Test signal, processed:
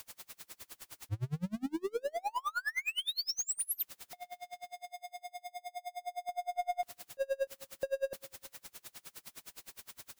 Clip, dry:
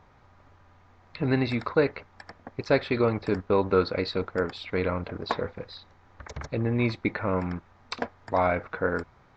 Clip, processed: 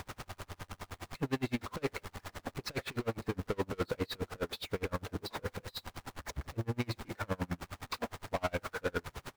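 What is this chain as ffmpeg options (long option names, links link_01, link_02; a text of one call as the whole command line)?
ffmpeg -i in.wav -filter_complex "[0:a]aeval=exprs='val(0)+0.5*0.0188*sgn(val(0))':channel_layout=same,aeval=exprs='(tanh(17.8*val(0)+0.05)-tanh(0.05))/17.8':channel_layout=same,bandreject=frequency=221.4:width_type=h:width=4,bandreject=frequency=442.8:width_type=h:width=4,bandreject=frequency=664.2:width_type=h:width=4,bandreject=frequency=885.6:width_type=h:width=4,asplit=2[link_01][link_02];[link_02]adelay=197,lowpass=frequency=2000:poles=1,volume=-23dB,asplit=2[link_03][link_04];[link_04]adelay=197,lowpass=frequency=2000:poles=1,volume=0.4,asplit=2[link_05][link_06];[link_06]adelay=197,lowpass=frequency=2000:poles=1,volume=0.4[link_07];[link_03][link_05][link_07]amix=inputs=3:normalize=0[link_08];[link_01][link_08]amix=inputs=2:normalize=0,aeval=exprs='val(0)*pow(10,-34*(0.5-0.5*cos(2*PI*9.7*n/s))/20)':channel_layout=same" out.wav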